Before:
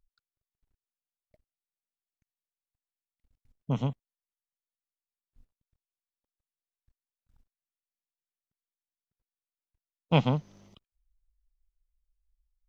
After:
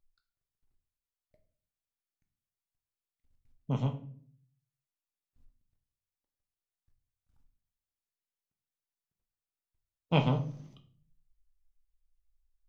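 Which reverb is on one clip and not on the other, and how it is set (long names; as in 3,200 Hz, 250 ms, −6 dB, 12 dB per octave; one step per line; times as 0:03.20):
rectangular room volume 56 cubic metres, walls mixed, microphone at 0.37 metres
level −4 dB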